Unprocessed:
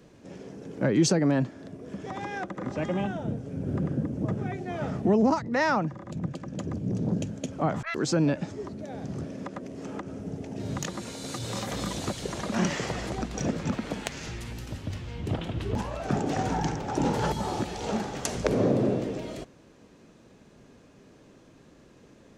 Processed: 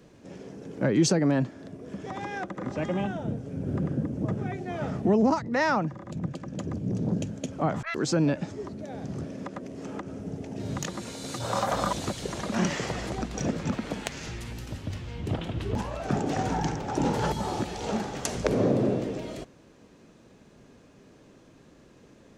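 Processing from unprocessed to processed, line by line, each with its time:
11.4–11.93 band shelf 910 Hz +11 dB

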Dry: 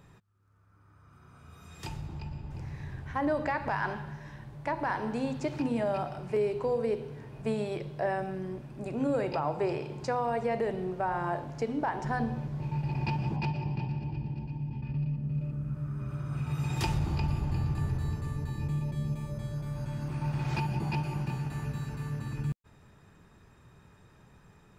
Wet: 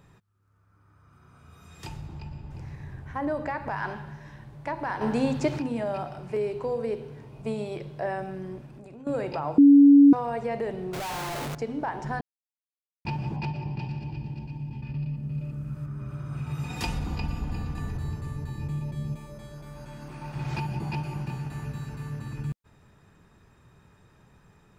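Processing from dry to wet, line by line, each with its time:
2.75–3.77 bell 3900 Hz -4.5 dB 1.8 oct
5.01–5.59 gain +7 dB
7.21–7.77 bell 1700 Hz -10.5 dB 0.3 oct
8.66–9.07 compressor 8:1, threshold -42 dBFS
9.58–10.13 bleep 283 Hz -10 dBFS
10.93–11.55 infinite clipping
12.21–13.05 mute
13.79–15.86 high shelf 2600 Hz +8.5 dB
16.65–17.97 comb 4.1 ms
19.16–20.36 bell 100 Hz -13 dB 1.5 oct

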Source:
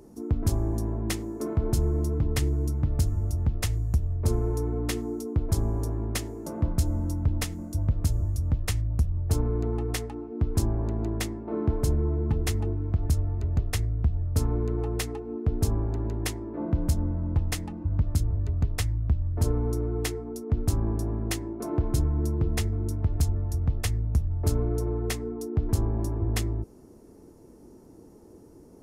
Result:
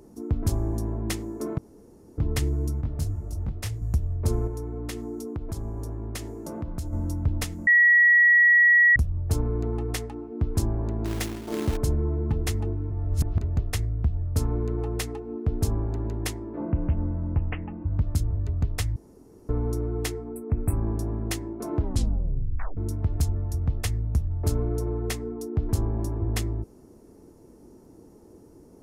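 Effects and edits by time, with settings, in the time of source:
1.58–2.18 room tone
2.81–3.82 detuned doubles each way 58 cents
4.47–6.93 compressor 3:1, threshold -30 dBFS
7.67–8.96 bleep 1920 Hz -13.5 dBFS
11.05–11.77 companded quantiser 4-bit
12.91–13.41 reverse
16.61–17.99 steep low-pass 2900 Hz 96 dB/oct
18.96–19.49 room tone
20.28–20.85 brick-wall FIR band-stop 2700–7700 Hz
21.77 tape stop 1.00 s

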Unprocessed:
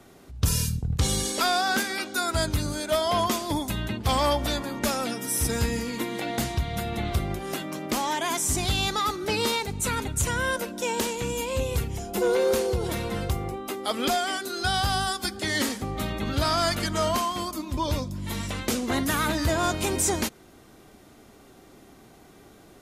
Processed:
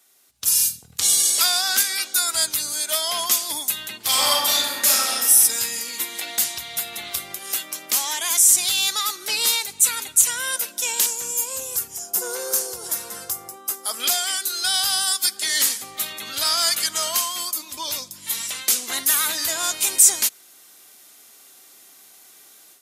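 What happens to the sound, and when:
3.97–5.26 reverb throw, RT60 1.3 s, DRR -4 dB
11.06–14 band shelf 2900 Hz -10 dB 1.3 oct
whole clip: HPF 56 Hz; differentiator; AGC gain up to 10.5 dB; gain +2.5 dB

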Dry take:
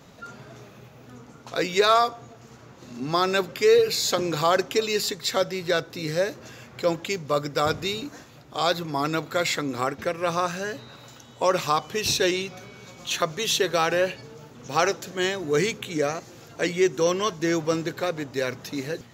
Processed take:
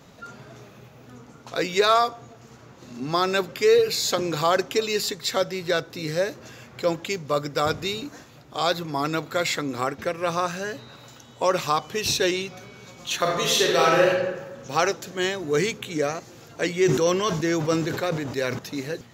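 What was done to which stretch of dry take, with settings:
13.17–14.09 reverb throw, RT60 1.2 s, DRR -2 dB
16.71–18.59 sustainer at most 45 dB/s

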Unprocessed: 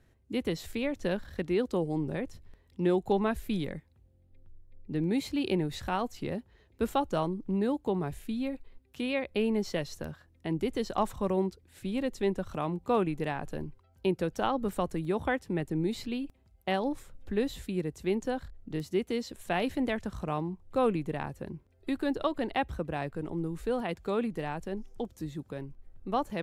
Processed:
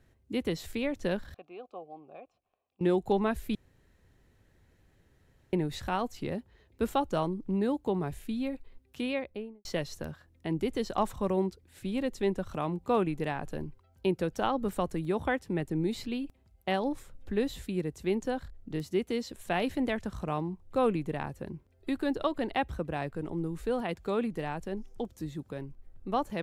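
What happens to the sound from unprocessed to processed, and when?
1.34–2.81 vowel filter a
3.55–5.53 room tone
9.01–9.65 studio fade out

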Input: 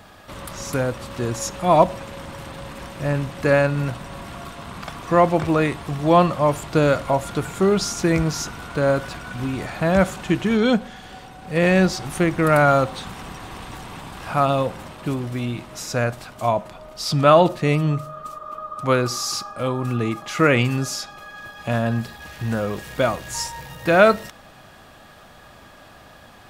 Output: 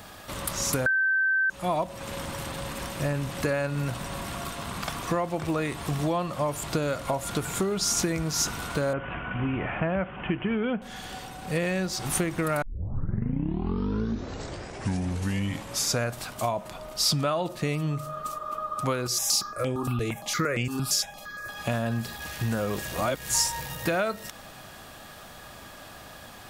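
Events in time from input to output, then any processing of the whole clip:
0.86–1.5 bleep 1550 Hz -6 dBFS
8.93–10.82 steep low-pass 3100 Hz 96 dB/oct
12.62 tape start 3.42 s
19.07–21.49 step phaser 8.7 Hz 260–4000 Hz
22.85–23.29 reverse
whole clip: compressor 10:1, threshold -24 dBFS; high shelf 5100 Hz +9.5 dB

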